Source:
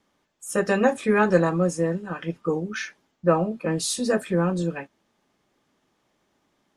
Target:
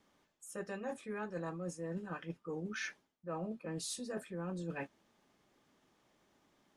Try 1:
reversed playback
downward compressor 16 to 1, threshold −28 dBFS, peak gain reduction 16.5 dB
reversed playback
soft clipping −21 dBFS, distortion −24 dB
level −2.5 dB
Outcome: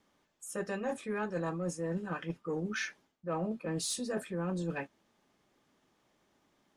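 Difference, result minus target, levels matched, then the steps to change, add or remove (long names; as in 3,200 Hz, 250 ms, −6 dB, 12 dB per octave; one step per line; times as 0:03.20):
downward compressor: peak gain reduction −6.5 dB
change: downward compressor 16 to 1, threshold −35 dBFS, peak gain reduction 23 dB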